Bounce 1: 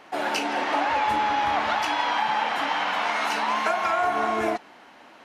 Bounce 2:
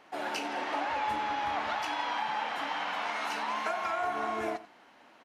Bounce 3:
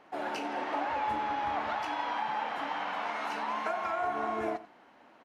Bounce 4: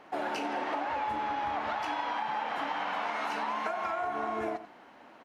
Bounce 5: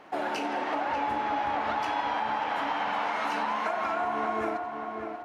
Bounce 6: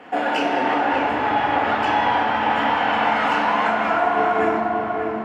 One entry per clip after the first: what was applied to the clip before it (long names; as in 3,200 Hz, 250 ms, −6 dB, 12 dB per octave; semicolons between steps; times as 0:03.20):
single-tap delay 89 ms −16 dB; level −8.5 dB
high-shelf EQ 2,100 Hz −9.5 dB; level +1.5 dB
downward compressor, threshold −34 dBFS, peak gain reduction 6.5 dB; level +4.5 dB
feedback echo with a low-pass in the loop 591 ms, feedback 43%, low-pass 2,300 Hz, level −5.5 dB; level +2.5 dB
convolution reverb RT60 4.0 s, pre-delay 3 ms, DRR 1 dB